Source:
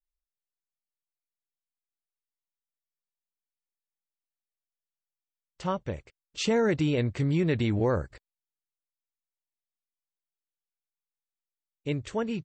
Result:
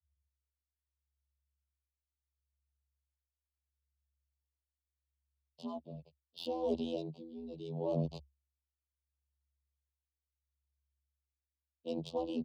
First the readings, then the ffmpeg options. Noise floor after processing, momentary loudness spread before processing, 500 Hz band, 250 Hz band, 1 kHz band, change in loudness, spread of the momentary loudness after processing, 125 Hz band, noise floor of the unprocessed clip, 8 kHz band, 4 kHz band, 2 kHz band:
below −85 dBFS, 14 LU, −9.0 dB, −11.0 dB, −10.0 dB, −11.5 dB, 15 LU, −14.5 dB, below −85 dBFS, below −20 dB, −11.0 dB, −27.0 dB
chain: -af "anlmdn=0.001,adynamicequalizer=threshold=0.01:dfrequency=1100:dqfactor=1.2:tfrequency=1100:tqfactor=1.2:attack=5:release=100:ratio=0.375:range=1.5:mode=cutabove:tftype=bell,areverse,acompressor=threshold=-42dB:ratio=5,areverse,afftfilt=real='hypot(re,im)*cos(PI*b)':imag='0':win_size=2048:overlap=0.75,aresample=11025,asoftclip=type=tanh:threshold=-39.5dB,aresample=44100,tremolo=f=0.74:d=0.71,aeval=exprs='0.0106*(cos(1*acos(clip(val(0)/0.0106,-1,1)))-cos(1*PI/2))+0.00133*(cos(2*acos(clip(val(0)/0.0106,-1,1)))-cos(2*PI/2))+0.00133*(cos(3*acos(clip(val(0)/0.0106,-1,1)))-cos(3*PI/2))+0.00015*(cos(7*acos(clip(val(0)/0.0106,-1,1)))-cos(7*PI/2))+0.000188*(cos(8*acos(clip(val(0)/0.0106,-1,1)))-cos(8*PI/2))':channel_layout=same,afreqshift=69,asuperstop=centerf=1700:order=8:qfactor=0.81,volume=16dB"

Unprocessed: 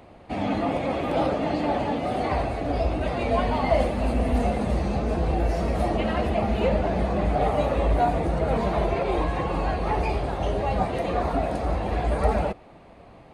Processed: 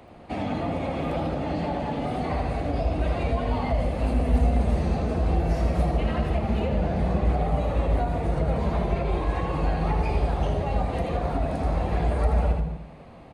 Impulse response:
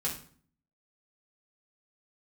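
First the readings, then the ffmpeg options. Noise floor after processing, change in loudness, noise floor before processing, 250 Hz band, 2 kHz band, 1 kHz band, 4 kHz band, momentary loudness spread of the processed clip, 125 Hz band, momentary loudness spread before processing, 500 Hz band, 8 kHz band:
−45 dBFS, −1.0 dB, −49 dBFS, −1.5 dB, −3.5 dB, −4.0 dB, −3.5 dB, 5 LU, +2.5 dB, 4 LU, −4.0 dB, can't be measured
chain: -filter_complex "[0:a]aresample=32000,aresample=44100,aecho=1:1:80:0.473,acrossover=split=160[link_01][link_02];[link_02]acompressor=threshold=-27dB:ratio=6[link_03];[link_01][link_03]amix=inputs=2:normalize=0,asplit=2[link_04][link_05];[link_05]lowshelf=frequency=410:gain=8.5[link_06];[1:a]atrim=start_sample=2205,adelay=149[link_07];[link_06][link_07]afir=irnorm=-1:irlink=0,volume=-17.5dB[link_08];[link_04][link_08]amix=inputs=2:normalize=0"

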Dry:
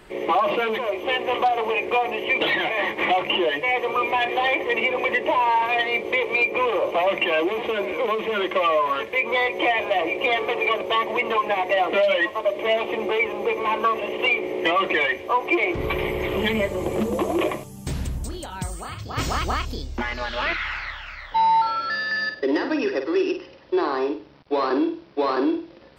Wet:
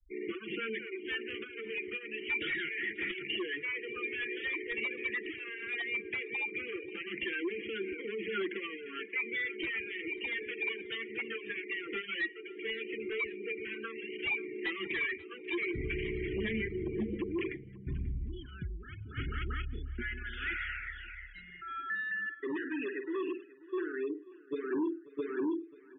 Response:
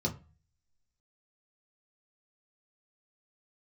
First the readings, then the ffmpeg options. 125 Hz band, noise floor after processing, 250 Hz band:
−8.5 dB, −52 dBFS, −10.5 dB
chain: -filter_complex "[0:a]asuperstop=centerf=770:order=12:qfactor=0.8,acrossover=split=2900[link_01][link_02];[link_02]acompressor=threshold=-45dB:ratio=4:attack=1:release=60[link_03];[link_01][link_03]amix=inputs=2:normalize=0,equalizer=frequency=170:width_type=o:width=2:gain=-3.5,aresample=8000,asoftclip=type=hard:threshold=-22.5dB,aresample=44100,afftfilt=real='re*gte(hypot(re,im),0.0224)':imag='im*gte(hypot(re,im),0.0224)':win_size=1024:overlap=0.75,aecho=1:1:537|1074|1611:0.1|0.033|0.0109,aphaser=in_gain=1:out_gain=1:delay=2.2:decay=0.23:speed=0.12:type=triangular,volume=-8dB"

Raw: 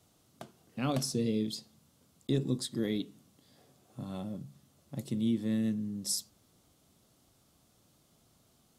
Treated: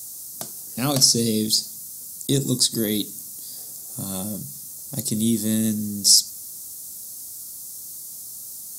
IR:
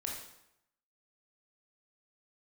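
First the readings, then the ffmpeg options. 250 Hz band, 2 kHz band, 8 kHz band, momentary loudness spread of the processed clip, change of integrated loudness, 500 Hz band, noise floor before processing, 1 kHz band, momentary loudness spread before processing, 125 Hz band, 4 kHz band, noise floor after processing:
+8.0 dB, +8.0 dB, +20.5 dB, 18 LU, +13.0 dB, +8.0 dB, −68 dBFS, +8.0 dB, 16 LU, +8.0 dB, +20.0 dB, −38 dBFS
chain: -filter_complex "[0:a]aexciter=amount=6.6:drive=8.6:freq=4500,highshelf=frequency=6700:gain=7.5,acrossover=split=4900[link_01][link_02];[link_02]acompressor=threshold=-32dB:ratio=4:attack=1:release=60[link_03];[link_01][link_03]amix=inputs=2:normalize=0,volume=8dB"

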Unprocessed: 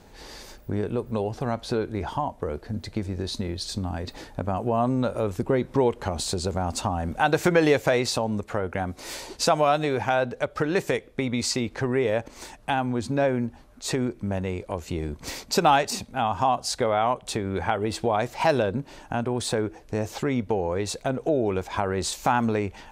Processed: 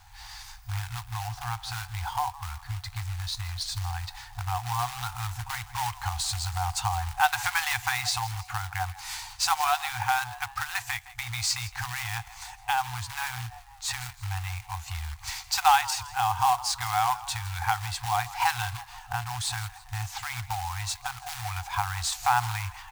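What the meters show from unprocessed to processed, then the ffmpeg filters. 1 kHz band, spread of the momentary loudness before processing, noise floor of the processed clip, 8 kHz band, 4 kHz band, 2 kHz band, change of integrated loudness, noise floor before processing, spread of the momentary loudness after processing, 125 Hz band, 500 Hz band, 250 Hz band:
0.0 dB, 10 LU, −49 dBFS, +1.5 dB, +1.0 dB, +0.5 dB, −3.5 dB, −50 dBFS, 11 LU, −3.0 dB, below −20 dB, below −25 dB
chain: -filter_complex "[0:a]asplit=5[link_01][link_02][link_03][link_04][link_05];[link_02]adelay=163,afreqshift=87,volume=-18.5dB[link_06];[link_03]adelay=326,afreqshift=174,volume=-24.7dB[link_07];[link_04]adelay=489,afreqshift=261,volume=-30.9dB[link_08];[link_05]adelay=652,afreqshift=348,volume=-37.1dB[link_09];[link_01][link_06][link_07][link_08][link_09]amix=inputs=5:normalize=0,acrusher=bits=3:mode=log:mix=0:aa=0.000001,afftfilt=real='re*(1-between(b*sr/4096,120,720))':imag='im*(1-between(b*sr/4096,120,720))':win_size=4096:overlap=0.75"

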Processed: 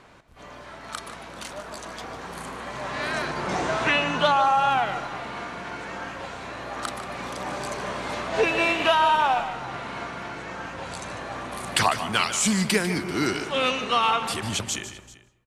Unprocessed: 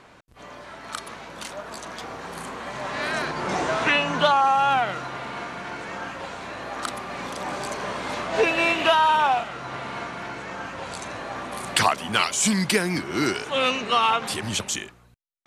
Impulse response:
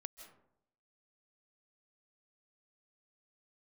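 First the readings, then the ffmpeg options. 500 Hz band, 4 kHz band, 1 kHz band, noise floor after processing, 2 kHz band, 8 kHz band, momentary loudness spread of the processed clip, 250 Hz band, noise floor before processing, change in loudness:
−1.0 dB, −1.0 dB, −1.0 dB, −49 dBFS, −1.0 dB, −1.0 dB, 16 LU, −0.5 dB, −51 dBFS, −1.0 dB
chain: -filter_complex "[0:a]aecho=1:1:149|389:0.251|0.1,asplit=2[link_01][link_02];[1:a]atrim=start_sample=2205,lowshelf=frequency=110:gain=12[link_03];[link_02][link_03]afir=irnorm=-1:irlink=0,volume=-1dB[link_04];[link_01][link_04]amix=inputs=2:normalize=0,volume=-5dB"

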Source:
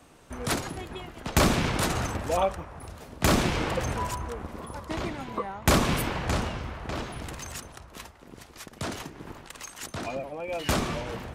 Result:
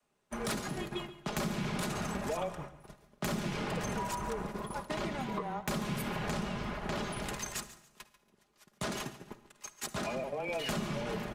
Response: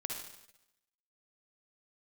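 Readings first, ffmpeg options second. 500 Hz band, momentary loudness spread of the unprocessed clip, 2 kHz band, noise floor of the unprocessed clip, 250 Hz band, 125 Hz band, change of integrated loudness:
−6.5 dB, 20 LU, −7.5 dB, −52 dBFS, −6.0 dB, −8.5 dB, −7.5 dB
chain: -filter_complex "[0:a]agate=range=-24dB:threshold=-38dB:ratio=16:detection=peak,lowshelf=frequency=110:gain=-11.5,aecho=1:1:4.8:0.52,adynamicequalizer=threshold=0.0126:dfrequency=200:dqfactor=1.2:tfrequency=200:tqfactor=1.2:attack=5:release=100:ratio=0.375:range=3.5:mode=boostabove:tftype=bell,acompressor=threshold=-33dB:ratio=8,asoftclip=type=tanh:threshold=-27dB,afreqshift=-18,aecho=1:1:141|282|423:0.158|0.0475|0.0143,asplit=2[link_01][link_02];[1:a]atrim=start_sample=2205,lowshelf=frequency=180:gain=10[link_03];[link_02][link_03]afir=irnorm=-1:irlink=0,volume=-12dB[link_04];[link_01][link_04]amix=inputs=2:normalize=0"

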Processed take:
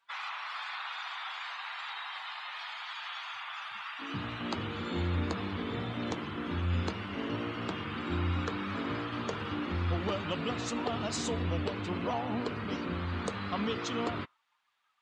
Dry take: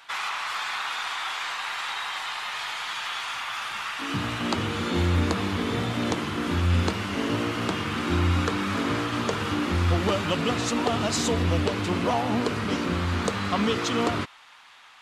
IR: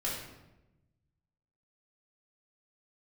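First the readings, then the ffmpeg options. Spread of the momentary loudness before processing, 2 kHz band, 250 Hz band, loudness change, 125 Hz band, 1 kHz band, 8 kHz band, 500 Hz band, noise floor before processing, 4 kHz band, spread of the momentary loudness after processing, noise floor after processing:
6 LU, −9.0 dB, −8.5 dB, −9.0 dB, −8.5 dB, −8.5 dB, −11.5 dB, −8.5 dB, −50 dBFS, −9.5 dB, 7 LU, −73 dBFS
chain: -af "afftdn=noise_reduction=19:noise_floor=-40,volume=-8.5dB"

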